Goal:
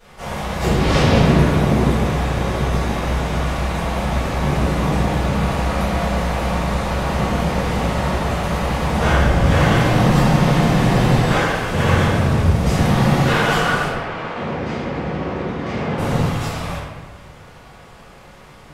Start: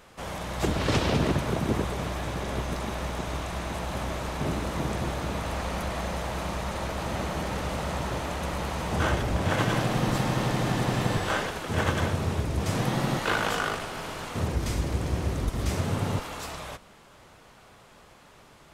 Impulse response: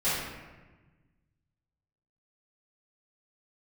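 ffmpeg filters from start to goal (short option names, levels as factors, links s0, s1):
-filter_complex "[0:a]asettb=1/sr,asplit=3[s0][s1][s2];[s0]atrim=end=13.874[s3];[s1]atrim=start=13.87:end=15.98,asetpts=PTS-STARTPTS,afade=t=in:d=0.004:c=qsin,afade=t=out:st=2.106:d=0.004:c=qsin,highpass=220,lowpass=2800[s4];[s2]atrim=start=15.976[s5];[s3][s4]acrossfade=d=0.004:c1=hsin:c2=qsin[s6];[s6][s5]acrossfade=d=0.004:c1=qsin:c2=hsin[s7];[1:a]atrim=start_sample=2205[s8];[s7][s8]afir=irnorm=-1:irlink=0,volume=0.841"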